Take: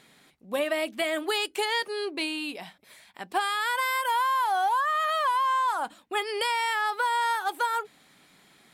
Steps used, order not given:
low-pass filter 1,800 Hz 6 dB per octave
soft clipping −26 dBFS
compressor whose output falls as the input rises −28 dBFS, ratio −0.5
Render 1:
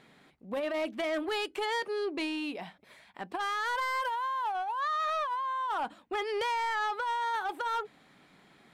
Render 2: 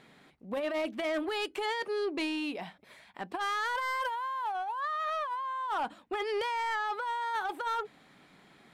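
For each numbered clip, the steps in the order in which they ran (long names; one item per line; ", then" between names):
low-pass filter, then compressor whose output falls as the input rises, then soft clipping
compressor whose output falls as the input rises, then low-pass filter, then soft clipping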